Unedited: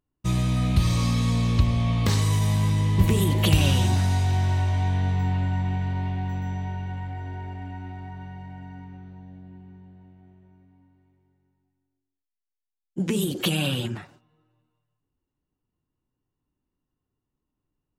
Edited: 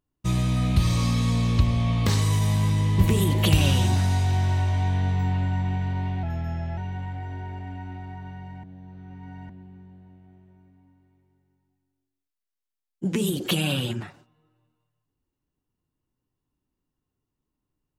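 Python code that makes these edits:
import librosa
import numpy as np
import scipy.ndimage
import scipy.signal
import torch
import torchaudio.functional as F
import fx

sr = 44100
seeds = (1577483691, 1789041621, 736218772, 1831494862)

y = fx.edit(x, sr, fx.speed_span(start_s=6.23, length_s=0.49, speed=0.9),
    fx.reverse_span(start_s=8.58, length_s=0.86), tone=tone)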